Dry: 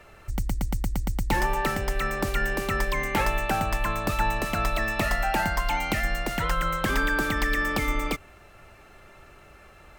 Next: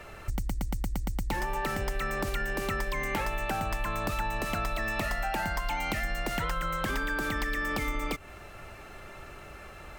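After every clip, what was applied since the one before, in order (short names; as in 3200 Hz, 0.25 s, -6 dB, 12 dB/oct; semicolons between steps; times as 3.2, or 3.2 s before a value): in parallel at -2.5 dB: limiter -20 dBFS, peak gain reduction 8.5 dB; on the sum: compressor 6:1, threshold -28 dBFS, peak gain reduction 11.5 dB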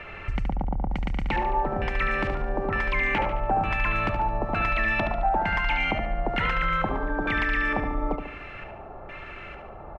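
LFO low-pass square 1.1 Hz 820–2500 Hz; feedback echo 72 ms, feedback 49%, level -7 dB; gain +3 dB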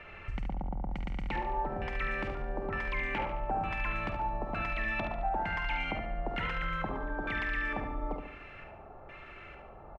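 doubler 49 ms -9.5 dB; gain -9 dB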